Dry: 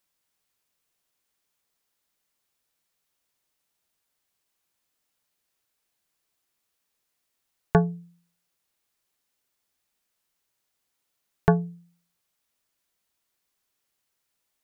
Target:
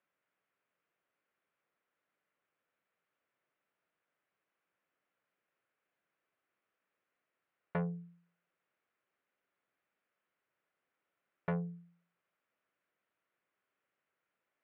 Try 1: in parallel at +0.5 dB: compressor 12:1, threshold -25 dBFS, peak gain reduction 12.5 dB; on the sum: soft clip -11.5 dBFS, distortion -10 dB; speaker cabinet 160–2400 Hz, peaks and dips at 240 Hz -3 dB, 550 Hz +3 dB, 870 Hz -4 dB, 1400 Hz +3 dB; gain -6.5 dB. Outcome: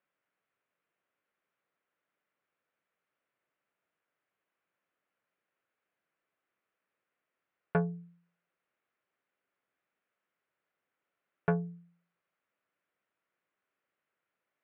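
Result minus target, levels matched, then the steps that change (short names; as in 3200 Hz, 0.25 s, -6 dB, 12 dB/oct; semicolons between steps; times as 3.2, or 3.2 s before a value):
soft clip: distortion -7 dB
change: soft clip -22 dBFS, distortion -3 dB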